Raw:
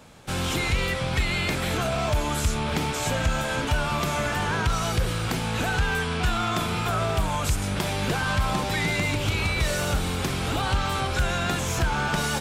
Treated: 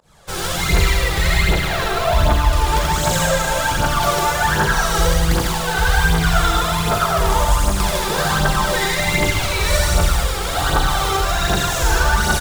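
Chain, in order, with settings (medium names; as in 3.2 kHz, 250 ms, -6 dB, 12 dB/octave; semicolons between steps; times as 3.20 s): 1.30–2.53 s: low-pass 4.2 kHz 24 dB/octave; reverb removal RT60 0.79 s; fifteen-band graphic EQ 100 Hz -9 dB, 250 Hz -10 dB, 2.5 kHz -7 dB; in parallel at -5 dB: bit crusher 5-bit; on the sum: volume shaper 129 bpm, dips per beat 1, -24 dB, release 146 ms; on a send: loudspeakers at several distances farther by 29 m -2 dB, 52 m -2 dB; on the sum: Schroeder reverb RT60 1.5 s, combs from 33 ms, DRR -2 dB; phaser 1.3 Hz, delay 2.6 ms, feedback 52%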